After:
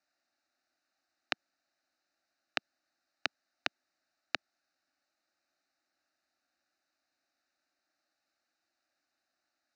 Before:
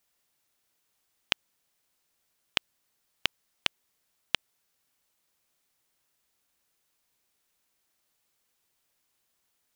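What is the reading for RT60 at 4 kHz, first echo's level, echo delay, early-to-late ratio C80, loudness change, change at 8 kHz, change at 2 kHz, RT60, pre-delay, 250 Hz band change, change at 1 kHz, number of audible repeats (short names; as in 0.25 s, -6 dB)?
none, none, none, none, -6.5 dB, -10.0 dB, -3.5 dB, none, none, -2.0 dB, -1.5 dB, none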